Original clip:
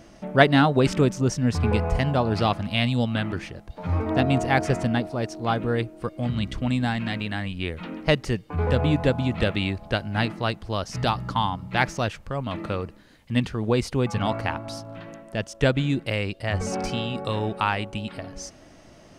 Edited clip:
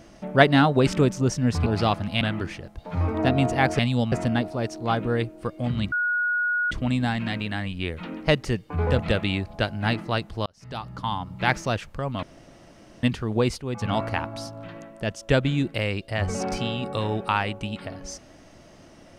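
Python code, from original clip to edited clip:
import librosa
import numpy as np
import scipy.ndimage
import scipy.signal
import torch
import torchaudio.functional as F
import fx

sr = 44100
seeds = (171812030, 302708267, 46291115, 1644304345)

y = fx.edit(x, sr, fx.cut(start_s=1.66, length_s=0.59),
    fx.move(start_s=2.8, length_s=0.33, to_s=4.71),
    fx.insert_tone(at_s=6.51, length_s=0.79, hz=1450.0, db=-21.0),
    fx.cut(start_s=8.79, length_s=0.52),
    fx.fade_in_span(start_s=10.78, length_s=1.02),
    fx.room_tone_fill(start_s=12.55, length_s=0.8),
    fx.fade_in_from(start_s=13.92, length_s=0.32, floor_db=-12.5), tone=tone)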